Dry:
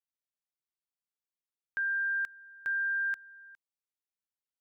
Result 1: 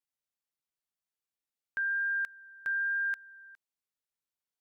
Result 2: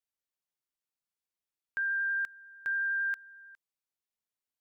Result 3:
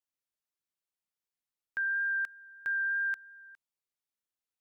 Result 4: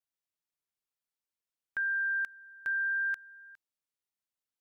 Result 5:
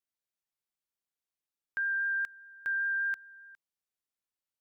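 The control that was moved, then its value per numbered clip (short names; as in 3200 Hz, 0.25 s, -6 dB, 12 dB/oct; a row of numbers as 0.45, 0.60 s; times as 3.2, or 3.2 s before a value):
vibrato, rate: 1.1, 11, 3.1, 0.3, 5 Hz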